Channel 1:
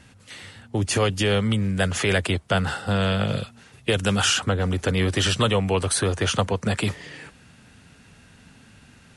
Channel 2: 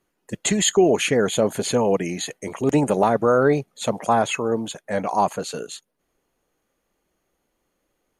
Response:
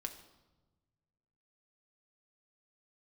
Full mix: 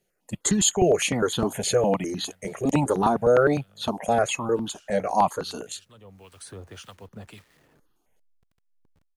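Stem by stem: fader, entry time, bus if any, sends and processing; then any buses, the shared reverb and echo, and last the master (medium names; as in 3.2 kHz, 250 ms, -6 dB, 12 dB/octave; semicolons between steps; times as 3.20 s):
-17.0 dB, 0.50 s, no send, send-on-delta sampling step -36 dBFS; harmonic tremolo 1.8 Hz, depth 70%, crossover 1.2 kHz; auto duck -16 dB, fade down 1.30 s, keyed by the second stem
+1.0 dB, 0.00 s, no send, stepped phaser 9.8 Hz 290–2200 Hz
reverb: none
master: none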